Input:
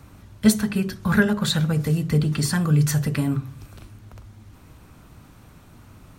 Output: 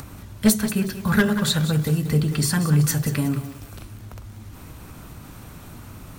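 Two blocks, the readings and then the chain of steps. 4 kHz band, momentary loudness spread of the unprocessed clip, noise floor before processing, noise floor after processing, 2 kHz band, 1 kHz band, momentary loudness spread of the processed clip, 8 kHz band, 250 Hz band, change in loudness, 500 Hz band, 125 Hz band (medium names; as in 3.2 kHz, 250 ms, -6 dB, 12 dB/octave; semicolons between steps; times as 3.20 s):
+1.5 dB, 6 LU, -49 dBFS, -42 dBFS, 0.0 dB, +1.0 dB, 22 LU, +3.5 dB, 0.0 dB, +0.5 dB, +0.5 dB, 0.0 dB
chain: one-sided wavefolder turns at -10.5 dBFS; treble shelf 9.4 kHz +8 dB; upward compressor, threshold -31 dBFS; bit-crushed delay 185 ms, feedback 35%, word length 6-bit, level -10.5 dB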